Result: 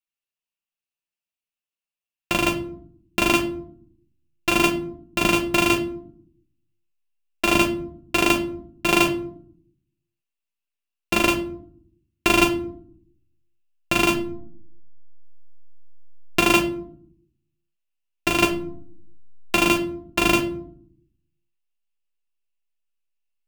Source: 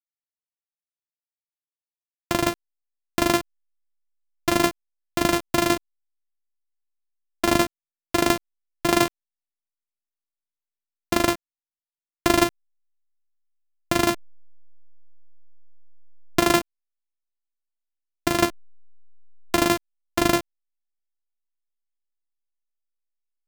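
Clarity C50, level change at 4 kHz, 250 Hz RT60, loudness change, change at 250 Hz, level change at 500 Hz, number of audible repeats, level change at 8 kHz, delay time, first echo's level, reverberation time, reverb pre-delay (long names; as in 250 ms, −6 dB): 12.5 dB, +3.5 dB, 1.0 s, +2.0 dB, +1.5 dB, 0.0 dB, no echo audible, 0.0 dB, no echo audible, no echo audible, 0.60 s, 5 ms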